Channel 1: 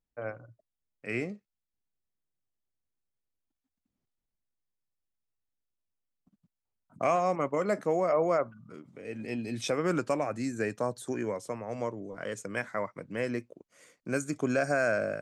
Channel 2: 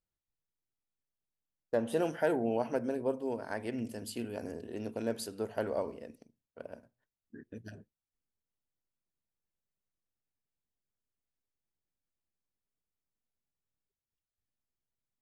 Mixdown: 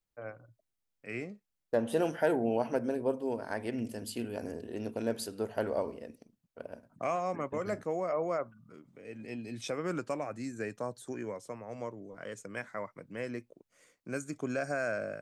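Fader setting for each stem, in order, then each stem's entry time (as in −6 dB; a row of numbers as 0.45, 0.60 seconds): −6.0, +1.5 decibels; 0.00, 0.00 seconds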